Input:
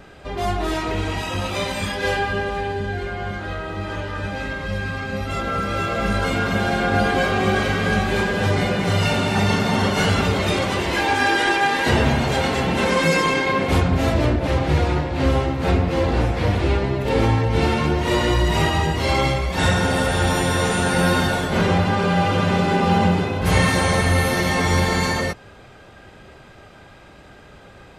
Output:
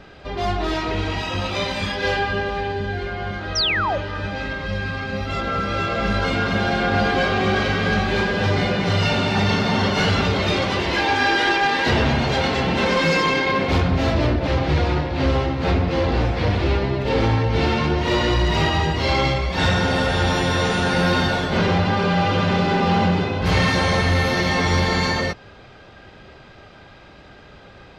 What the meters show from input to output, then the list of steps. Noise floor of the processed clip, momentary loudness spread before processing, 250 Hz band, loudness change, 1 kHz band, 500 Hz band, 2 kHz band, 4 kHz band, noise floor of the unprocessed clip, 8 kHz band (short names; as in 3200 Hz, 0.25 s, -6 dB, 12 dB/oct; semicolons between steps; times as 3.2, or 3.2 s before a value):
-45 dBFS, 8 LU, -0.5 dB, 0.0 dB, 0.0 dB, -0.5 dB, +0.5 dB, +2.0 dB, -45 dBFS, -5.0 dB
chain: overloaded stage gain 13 dB; painted sound fall, 3.55–3.98, 510–6100 Hz -22 dBFS; resonant high shelf 6800 Hz -11.5 dB, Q 1.5